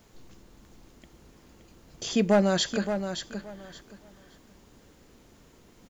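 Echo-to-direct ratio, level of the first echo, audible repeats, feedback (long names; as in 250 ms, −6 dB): −8.5 dB, −8.5 dB, 2, 21%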